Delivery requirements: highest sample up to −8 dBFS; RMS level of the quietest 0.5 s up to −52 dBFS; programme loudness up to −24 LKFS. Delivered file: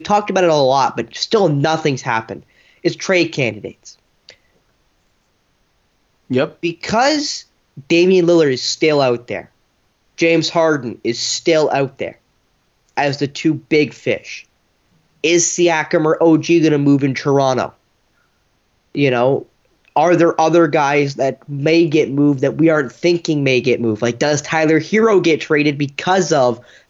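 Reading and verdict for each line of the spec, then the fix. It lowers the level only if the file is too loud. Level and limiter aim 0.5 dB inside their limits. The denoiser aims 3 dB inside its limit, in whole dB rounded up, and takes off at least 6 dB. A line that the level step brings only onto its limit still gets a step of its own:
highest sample −3.5 dBFS: out of spec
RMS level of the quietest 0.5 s −62 dBFS: in spec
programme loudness −15.5 LKFS: out of spec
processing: level −9 dB

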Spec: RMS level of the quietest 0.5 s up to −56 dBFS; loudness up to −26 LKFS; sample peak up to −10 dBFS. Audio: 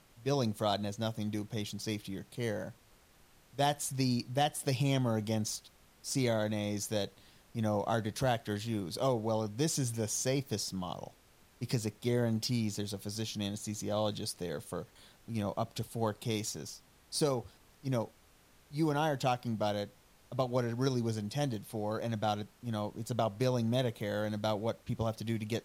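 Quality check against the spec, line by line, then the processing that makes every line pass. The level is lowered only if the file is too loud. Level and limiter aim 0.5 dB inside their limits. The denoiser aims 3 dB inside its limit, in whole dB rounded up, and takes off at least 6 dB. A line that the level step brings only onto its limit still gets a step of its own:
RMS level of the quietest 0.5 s −63 dBFS: in spec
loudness −34.5 LKFS: in spec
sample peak −16.5 dBFS: in spec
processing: no processing needed

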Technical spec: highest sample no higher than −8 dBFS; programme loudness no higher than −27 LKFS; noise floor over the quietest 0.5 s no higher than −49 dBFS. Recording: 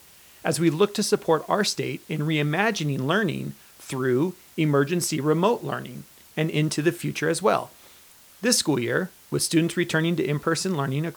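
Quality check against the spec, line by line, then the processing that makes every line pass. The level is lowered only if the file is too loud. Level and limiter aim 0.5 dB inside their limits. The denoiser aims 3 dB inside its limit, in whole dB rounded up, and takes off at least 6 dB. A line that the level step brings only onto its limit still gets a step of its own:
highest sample −6.5 dBFS: out of spec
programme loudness −24.0 LKFS: out of spec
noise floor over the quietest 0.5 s −51 dBFS: in spec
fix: level −3.5 dB

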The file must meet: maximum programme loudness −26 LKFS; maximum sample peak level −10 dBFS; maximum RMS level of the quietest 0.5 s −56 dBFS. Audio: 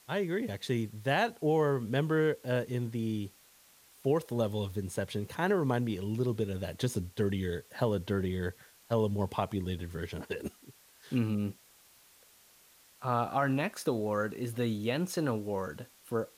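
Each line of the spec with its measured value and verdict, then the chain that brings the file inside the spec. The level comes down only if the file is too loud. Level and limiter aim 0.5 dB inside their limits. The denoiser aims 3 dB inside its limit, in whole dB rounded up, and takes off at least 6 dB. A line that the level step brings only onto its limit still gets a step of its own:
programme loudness −32.5 LKFS: in spec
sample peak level −14.5 dBFS: in spec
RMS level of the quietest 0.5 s −61 dBFS: in spec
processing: no processing needed

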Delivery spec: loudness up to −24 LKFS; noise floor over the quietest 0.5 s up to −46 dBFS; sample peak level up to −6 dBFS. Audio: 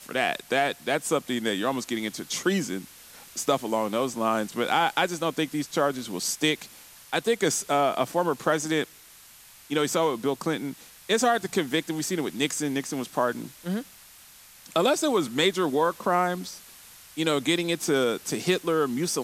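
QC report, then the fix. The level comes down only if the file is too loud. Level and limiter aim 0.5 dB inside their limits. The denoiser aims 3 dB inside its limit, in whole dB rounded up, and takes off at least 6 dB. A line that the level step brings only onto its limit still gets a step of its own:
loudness −26.5 LKFS: in spec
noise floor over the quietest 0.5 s −51 dBFS: in spec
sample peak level −8.5 dBFS: in spec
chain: no processing needed

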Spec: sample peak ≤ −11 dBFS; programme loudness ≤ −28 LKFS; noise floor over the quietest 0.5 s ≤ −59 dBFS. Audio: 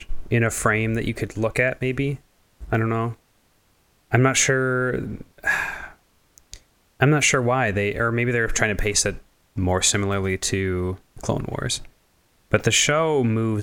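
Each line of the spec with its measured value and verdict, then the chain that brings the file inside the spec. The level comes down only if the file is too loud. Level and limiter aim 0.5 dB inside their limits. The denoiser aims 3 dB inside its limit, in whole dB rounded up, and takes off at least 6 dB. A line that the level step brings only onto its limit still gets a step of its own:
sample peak −3.0 dBFS: out of spec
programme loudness −22.0 LKFS: out of spec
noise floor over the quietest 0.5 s −62 dBFS: in spec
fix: level −6.5 dB
brickwall limiter −11.5 dBFS

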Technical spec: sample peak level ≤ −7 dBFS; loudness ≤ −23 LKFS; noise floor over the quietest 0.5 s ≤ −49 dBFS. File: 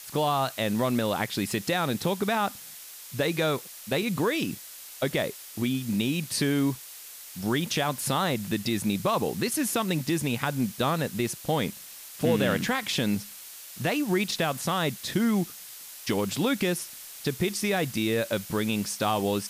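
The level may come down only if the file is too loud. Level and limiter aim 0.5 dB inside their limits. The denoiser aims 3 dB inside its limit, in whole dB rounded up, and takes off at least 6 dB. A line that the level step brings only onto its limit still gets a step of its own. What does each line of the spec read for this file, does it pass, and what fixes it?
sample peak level −11.5 dBFS: in spec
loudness −27.5 LKFS: in spec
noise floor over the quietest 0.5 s −44 dBFS: out of spec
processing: broadband denoise 8 dB, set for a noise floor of −44 dBFS

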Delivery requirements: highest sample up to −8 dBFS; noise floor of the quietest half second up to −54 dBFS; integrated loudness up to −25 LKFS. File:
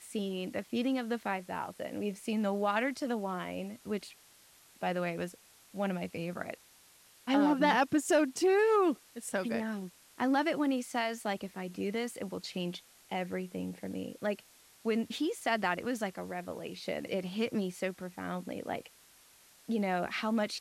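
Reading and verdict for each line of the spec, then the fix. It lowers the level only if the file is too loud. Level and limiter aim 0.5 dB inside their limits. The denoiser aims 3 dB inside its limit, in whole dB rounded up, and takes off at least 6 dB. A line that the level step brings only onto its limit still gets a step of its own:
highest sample −15.5 dBFS: in spec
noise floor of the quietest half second −61 dBFS: in spec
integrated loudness −33.5 LKFS: in spec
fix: no processing needed

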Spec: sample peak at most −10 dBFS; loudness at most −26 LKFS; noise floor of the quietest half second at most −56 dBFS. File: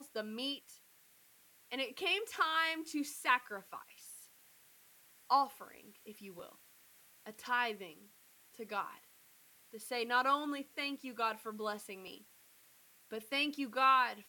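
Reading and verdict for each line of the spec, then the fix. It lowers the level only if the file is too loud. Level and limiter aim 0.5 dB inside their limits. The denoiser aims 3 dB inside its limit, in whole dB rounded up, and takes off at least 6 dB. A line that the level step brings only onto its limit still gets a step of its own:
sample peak −16.5 dBFS: in spec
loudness −35.5 LKFS: in spec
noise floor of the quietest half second −66 dBFS: in spec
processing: no processing needed

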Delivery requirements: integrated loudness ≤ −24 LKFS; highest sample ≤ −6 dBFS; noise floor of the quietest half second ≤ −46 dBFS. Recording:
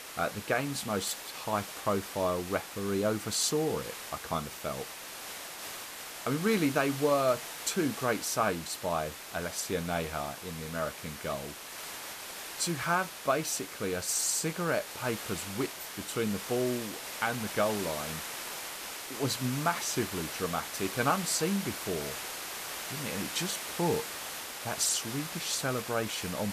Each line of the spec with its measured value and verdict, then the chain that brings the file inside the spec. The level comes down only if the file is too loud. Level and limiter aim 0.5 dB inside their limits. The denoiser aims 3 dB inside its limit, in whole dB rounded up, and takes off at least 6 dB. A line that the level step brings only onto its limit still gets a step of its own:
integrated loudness −32.5 LKFS: in spec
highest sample −14.0 dBFS: in spec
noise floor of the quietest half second −43 dBFS: out of spec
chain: broadband denoise 6 dB, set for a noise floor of −43 dBFS

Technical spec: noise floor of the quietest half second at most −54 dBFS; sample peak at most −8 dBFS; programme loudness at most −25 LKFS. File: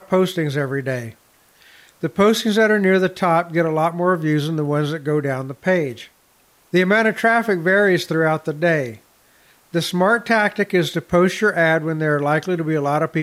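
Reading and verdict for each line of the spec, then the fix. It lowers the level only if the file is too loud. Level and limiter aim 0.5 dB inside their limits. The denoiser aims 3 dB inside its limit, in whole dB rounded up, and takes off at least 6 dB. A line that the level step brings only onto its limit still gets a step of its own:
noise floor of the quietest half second −57 dBFS: in spec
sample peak −6.0 dBFS: out of spec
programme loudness −18.5 LKFS: out of spec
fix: level −7 dB

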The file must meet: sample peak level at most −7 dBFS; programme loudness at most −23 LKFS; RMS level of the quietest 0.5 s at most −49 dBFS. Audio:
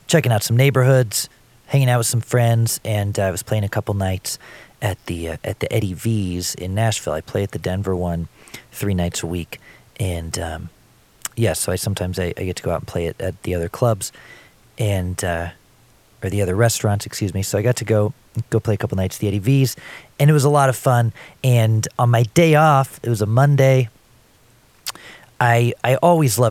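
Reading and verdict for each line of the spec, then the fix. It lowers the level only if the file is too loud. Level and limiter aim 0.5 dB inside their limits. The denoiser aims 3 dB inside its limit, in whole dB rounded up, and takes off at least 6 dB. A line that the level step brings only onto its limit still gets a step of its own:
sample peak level −2.0 dBFS: out of spec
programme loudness −19.5 LKFS: out of spec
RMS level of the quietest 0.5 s −53 dBFS: in spec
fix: level −4 dB
brickwall limiter −7.5 dBFS

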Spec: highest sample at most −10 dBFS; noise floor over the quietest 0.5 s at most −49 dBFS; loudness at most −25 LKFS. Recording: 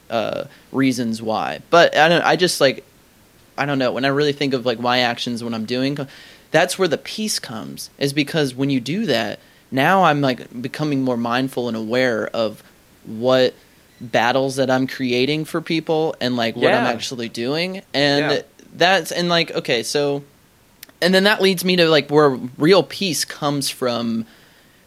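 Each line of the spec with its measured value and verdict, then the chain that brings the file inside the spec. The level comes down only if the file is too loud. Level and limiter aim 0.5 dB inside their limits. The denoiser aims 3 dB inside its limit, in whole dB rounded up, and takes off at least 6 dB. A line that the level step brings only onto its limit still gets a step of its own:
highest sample −1.5 dBFS: out of spec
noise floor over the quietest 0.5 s −53 dBFS: in spec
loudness −18.5 LKFS: out of spec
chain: level −7 dB
brickwall limiter −10.5 dBFS

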